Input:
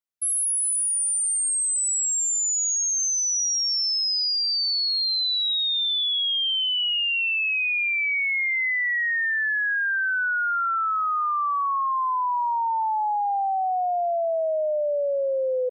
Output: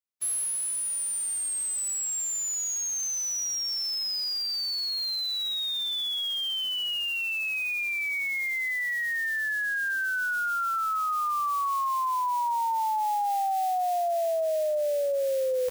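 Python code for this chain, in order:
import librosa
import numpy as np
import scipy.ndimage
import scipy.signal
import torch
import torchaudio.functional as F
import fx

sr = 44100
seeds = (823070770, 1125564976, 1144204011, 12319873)

y = fx.envelope_flatten(x, sr, power=0.3)
y = fx.rider(y, sr, range_db=10, speed_s=0.5)
y = F.gain(torch.from_numpy(y), -5.0).numpy()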